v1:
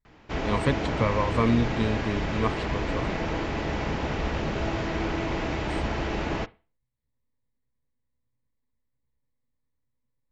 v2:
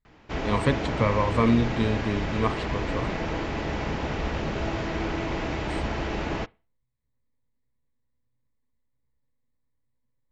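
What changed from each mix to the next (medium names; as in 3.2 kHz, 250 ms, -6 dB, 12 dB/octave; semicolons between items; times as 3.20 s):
speech: send +7.0 dB; background: send -6.0 dB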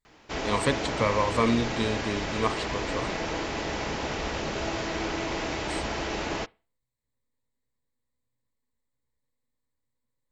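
master: add tone controls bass -7 dB, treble +10 dB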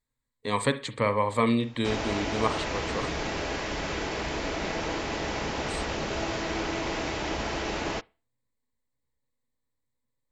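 background: entry +1.55 s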